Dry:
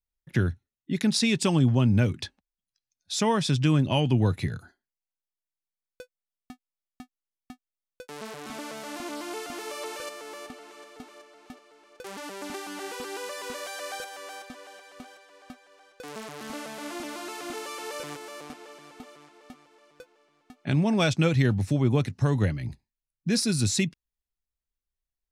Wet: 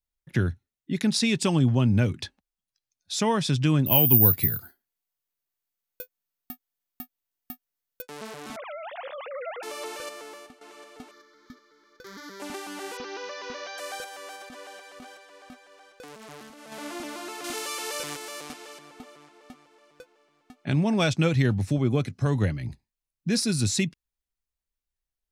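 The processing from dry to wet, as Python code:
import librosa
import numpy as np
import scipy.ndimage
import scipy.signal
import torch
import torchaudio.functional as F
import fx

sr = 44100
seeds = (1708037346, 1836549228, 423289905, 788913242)

y = fx.resample_bad(x, sr, factor=3, down='none', up='zero_stuff', at=(3.86, 8.02))
y = fx.sine_speech(y, sr, at=(8.56, 9.63))
y = fx.fixed_phaser(y, sr, hz=2700.0, stages=6, at=(11.11, 12.4))
y = fx.cheby1_lowpass(y, sr, hz=6200.0, order=6, at=(12.97, 13.78))
y = fx.over_compress(y, sr, threshold_db=-44.0, ratio=-1.0, at=(14.36, 16.72))
y = fx.high_shelf(y, sr, hz=2200.0, db=9.0, at=(17.44, 18.79))
y = fx.notch_comb(y, sr, f0_hz=910.0, at=(21.78, 22.26))
y = fx.edit(y, sr, fx.fade_out_to(start_s=10.21, length_s=0.4, floor_db=-13.5), tone=tone)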